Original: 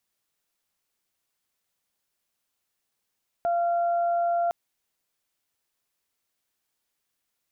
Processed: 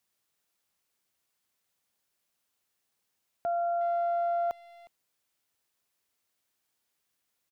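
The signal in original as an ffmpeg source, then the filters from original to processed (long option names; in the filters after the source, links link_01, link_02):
-f lavfi -i "aevalsrc='0.0841*sin(2*PI*689*t)+0.0119*sin(2*PI*1378*t)':duration=1.06:sample_rate=44100"
-filter_complex "[0:a]highpass=46,alimiter=level_in=1.5dB:limit=-24dB:level=0:latency=1:release=318,volume=-1.5dB,asplit=2[link_01][link_02];[link_02]adelay=360,highpass=300,lowpass=3400,asoftclip=type=hard:threshold=-35.5dB,volume=-16dB[link_03];[link_01][link_03]amix=inputs=2:normalize=0"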